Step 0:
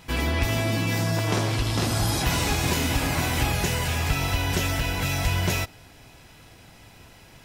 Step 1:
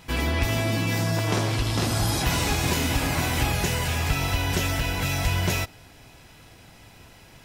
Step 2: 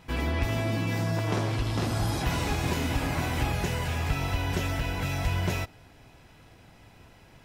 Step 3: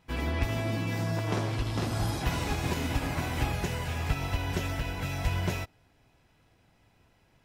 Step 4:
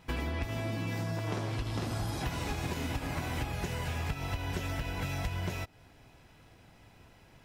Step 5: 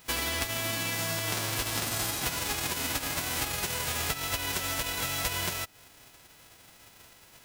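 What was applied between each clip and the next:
no audible change
treble shelf 3.1 kHz -8.5 dB; trim -3 dB
upward expansion 1.5:1, over -45 dBFS
compression 6:1, threshold -39 dBFS, peak gain reduction 16 dB; trim +7 dB
formants flattened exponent 0.3; trim +2.5 dB

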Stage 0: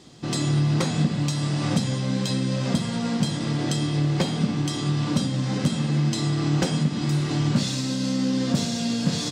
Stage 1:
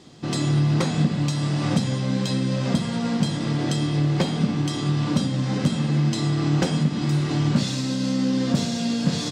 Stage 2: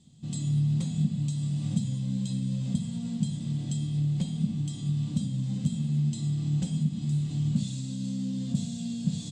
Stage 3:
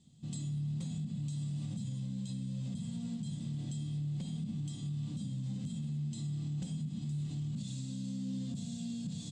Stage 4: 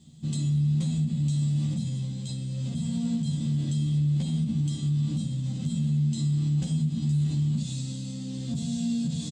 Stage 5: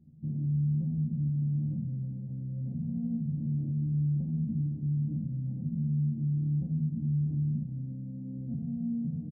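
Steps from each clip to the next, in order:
treble shelf 4.8 kHz -5 dB; hum notches 60/120 Hz; trim +1.5 dB
FFT filter 210 Hz 0 dB, 350 Hz -20 dB, 680 Hz -18 dB, 1.4 kHz -25 dB, 2.1 kHz -19 dB, 3.5 kHz -7 dB, 5.5 kHz -14 dB, 7.8 kHz +2 dB, 12 kHz -16 dB; trim -5 dB
peak limiter -26 dBFS, peak gain reduction 11 dB; trim -5.5 dB
doubling 13 ms -3 dB; trim +8 dB
Gaussian low-pass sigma 16 samples; trim -3.5 dB

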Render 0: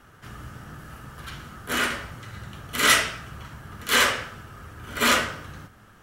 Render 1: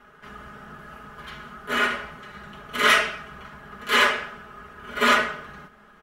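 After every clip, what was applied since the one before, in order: tone controls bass -8 dB, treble -13 dB; comb 4.8 ms, depth 96%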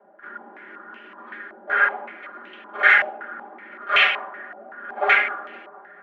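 frequency shift +170 Hz; feedback echo behind a band-pass 219 ms, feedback 63%, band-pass 500 Hz, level -14 dB; step-sequenced low-pass 5.3 Hz 710–2700 Hz; trim -4 dB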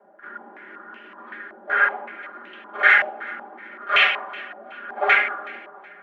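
thinning echo 372 ms, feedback 34%, level -22 dB

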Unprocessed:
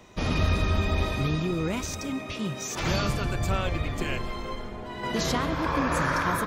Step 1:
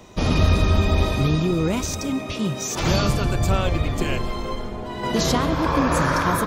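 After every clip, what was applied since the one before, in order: peaking EQ 1.9 kHz -5 dB 1.3 oct; trim +7 dB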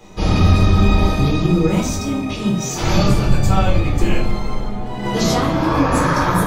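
simulated room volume 410 m³, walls furnished, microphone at 4 m; trim -3.5 dB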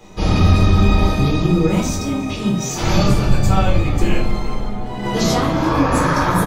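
delay 360 ms -19 dB

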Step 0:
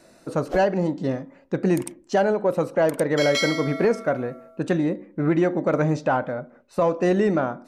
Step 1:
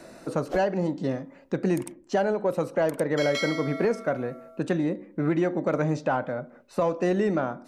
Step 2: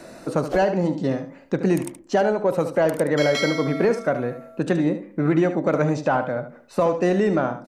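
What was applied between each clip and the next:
three bands compressed up and down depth 40%; trim -4 dB
delay 74 ms -10.5 dB; trim +4.5 dB

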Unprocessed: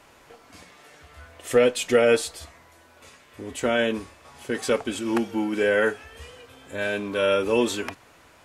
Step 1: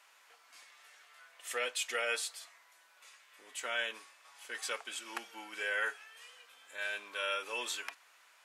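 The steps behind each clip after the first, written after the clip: high-pass 1.2 kHz 12 dB/octave; trim -6.5 dB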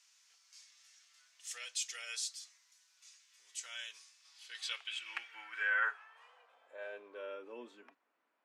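band-pass sweep 5.8 kHz -> 240 Hz, 4.13–7.69 s; trim +5 dB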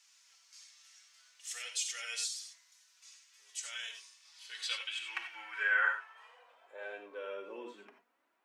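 flange 0.59 Hz, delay 2.2 ms, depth 3.9 ms, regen +46%; gated-style reverb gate 110 ms rising, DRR 5 dB; trim +6 dB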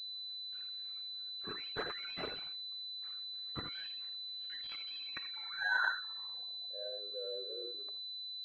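resonances exaggerated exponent 3; hysteresis with a dead band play -57 dBFS; class-D stage that switches slowly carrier 4 kHz; trim -1 dB

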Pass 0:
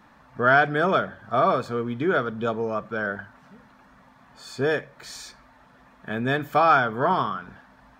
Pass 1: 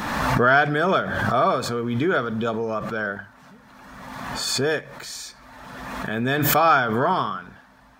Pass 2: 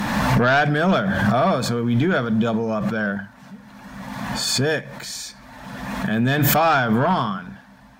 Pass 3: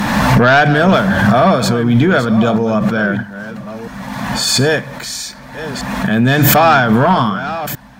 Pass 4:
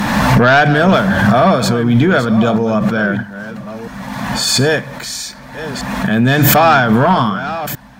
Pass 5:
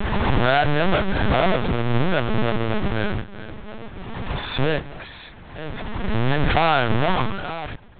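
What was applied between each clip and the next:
treble shelf 4 kHz +7.5 dB; swell ahead of each attack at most 30 dB/s
graphic EQ with 31 bands 125 Hz +5 dB, 200 Hz +9 dB, 400 Hz -6 dB, 1.25 kHz -6 dB; sine folder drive 5 dB, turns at -6 dBFS; trim -5.5 dB
chunks repeated in reverse 646 ms, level -12.5 dB; trim +7.5 dB
no audible change
square wave that keeps the level; LPC vocoder at 8 kHz pitch kept; trim -11 dB

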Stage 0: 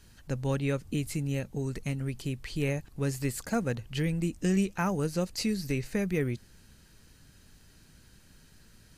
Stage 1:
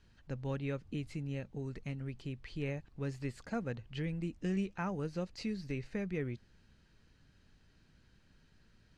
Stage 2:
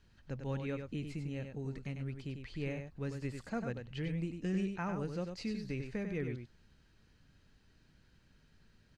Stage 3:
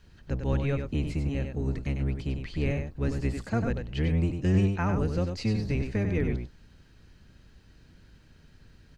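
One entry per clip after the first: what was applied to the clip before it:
low-pass 4 kHz 12 dB/octave; trim -8 dB
delay 97 ms -6.5 dB; trim -1 dB
octave divider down 1 oct, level +2 dB; trim +8 dB

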